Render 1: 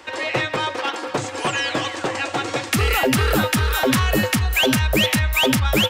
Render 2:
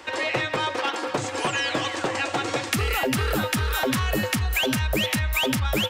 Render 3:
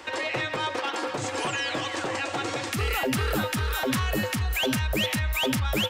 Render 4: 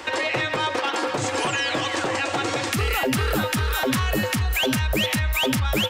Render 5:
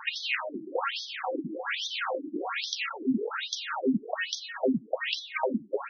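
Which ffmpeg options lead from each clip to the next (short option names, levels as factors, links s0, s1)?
-af "acompressor=threshold=0.0891:ratio=6"
-af "alimiter=limit=0.106:level=0:latency=1:release=102"
-af "acompressor=threshold=0.0355:ratio=2,volume=2.24"
-af "afftfilt=real='re*between(b*sr/1024,240*pow(4600/240,0.5+0.5*sin(2*PI*1.2*pts/sr))/1.41,240*pow(4600/240,0.5+0.5*sin(2*PI*1.2*pts/sr))*1.41)':imag='im*between(b*sr/1024,240*pow(4600/240,0.5+0.5*sin(2*PI*1.2*pts/sr))/1.41,240*pow(4600/240,0.5+0.5*sin(2*PI*1.2*pts/sr))*1.41)':win_size=1024:overlap=0.75"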